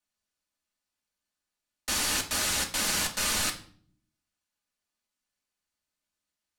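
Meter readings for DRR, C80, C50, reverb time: 0.5 dB, 16.5 dB, 11.5 dB, 0.50 s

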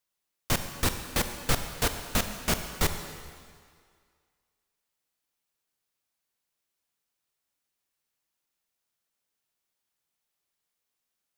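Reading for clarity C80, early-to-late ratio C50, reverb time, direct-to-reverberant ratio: 9.0 dB, 8.0 dB, 2.0 s, 7.0 dB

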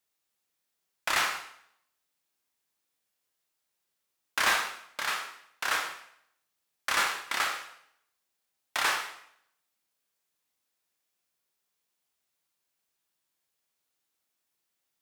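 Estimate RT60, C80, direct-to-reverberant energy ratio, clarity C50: 0.70 s, 9.5 dB, 3.0 dB, 7.0 dB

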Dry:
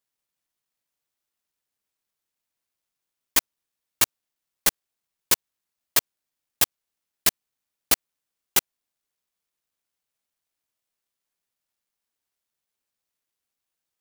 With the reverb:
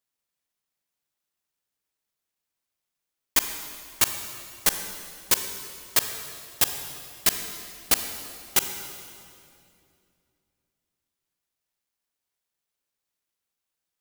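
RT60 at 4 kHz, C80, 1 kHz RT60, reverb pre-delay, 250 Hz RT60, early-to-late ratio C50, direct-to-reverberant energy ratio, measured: 2.1 s, 8.5 dB, 2.3 s, 32 ms, 3.1 s, 7.5 dB, 7.0 dB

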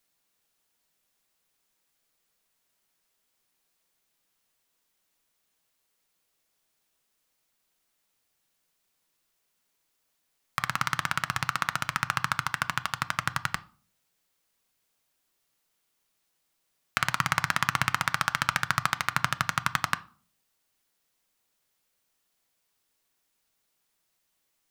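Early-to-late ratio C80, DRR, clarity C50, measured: 25.5 dB, 11.5 dB, 20.5 dB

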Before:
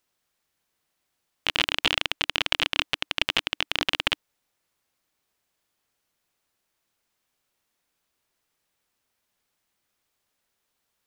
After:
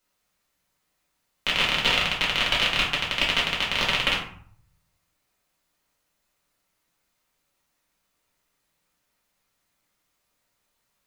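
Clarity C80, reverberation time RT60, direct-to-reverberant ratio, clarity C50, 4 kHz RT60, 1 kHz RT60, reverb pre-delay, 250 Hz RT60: 10.0 dB, 0.55 s, -5.0 dB, 6.0 dB, 0.35 s, 0.55 s, 4 ms, 0.75 s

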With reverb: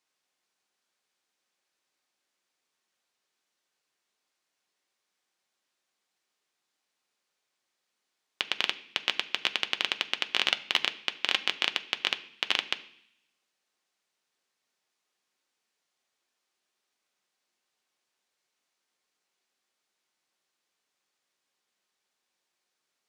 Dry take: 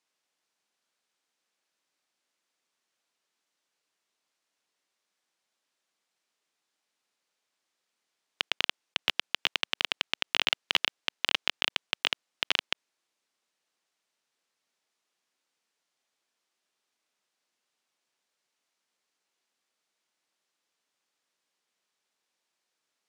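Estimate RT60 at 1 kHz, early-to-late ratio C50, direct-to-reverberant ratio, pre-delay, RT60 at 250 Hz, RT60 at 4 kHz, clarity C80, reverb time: 0.70 s, 16.0 dB, 8.0 dB, 3 ms, 0.90 s, 0.80 s, 19.0 dB, 0.65 s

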